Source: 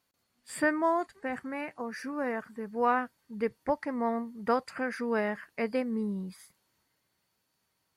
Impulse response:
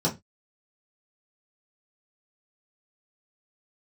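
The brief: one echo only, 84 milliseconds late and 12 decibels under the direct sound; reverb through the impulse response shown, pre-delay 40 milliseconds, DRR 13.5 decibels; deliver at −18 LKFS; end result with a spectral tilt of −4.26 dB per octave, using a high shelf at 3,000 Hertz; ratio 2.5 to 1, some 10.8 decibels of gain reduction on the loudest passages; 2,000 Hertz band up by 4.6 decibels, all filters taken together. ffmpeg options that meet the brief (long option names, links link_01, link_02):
-filter_complex "[0:a]equalizer=frequency=2000:width_type=o:gain=3.5,highshelf=frequency=3000:gain=7,acompressor=threshold=-36dB:ratio=2.5,aecho=1:1:84:0.251,asplit=2[link_01][link_02];[1:a]atrim=start_sample=2205,adelay=40[link_03];[link_02][link_03]afir=irnorm=-1:irlink=0,volume=-24dB[link_04];[link_01][link_04]amix=inputs=2:normalize=0,volume=19.5dB"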